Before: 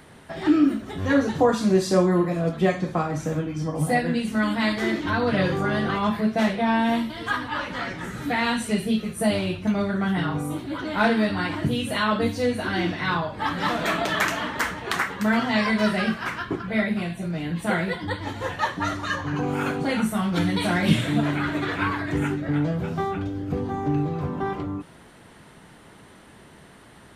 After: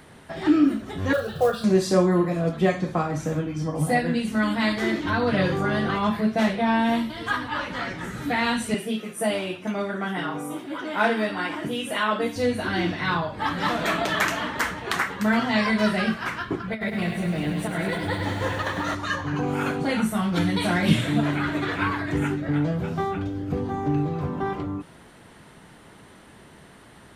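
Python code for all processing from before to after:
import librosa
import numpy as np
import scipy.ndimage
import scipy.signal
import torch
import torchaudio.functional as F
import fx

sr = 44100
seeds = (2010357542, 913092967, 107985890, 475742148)

y = fx.chain(x, sr, fx.fixed_phaser(hz=1400.0, stages=8),
    fx.quant_companded(bits=6), at=(1.13, 1.64))
y = fx.chain(y, sr, fx.highpass(hz=280.0, slope=12),
    fx.notch(hz=4200.0, q=5.1), at=(8.74, 12.36))
y = fx.chain(y, sr, fx.over_compress(threshold_db=-26.0, ratio=-0.5),
    fx.echo_crushed(ms=101, feedback_pct=80, bits=9, wet_db=-7), at=(16.71, 18.95))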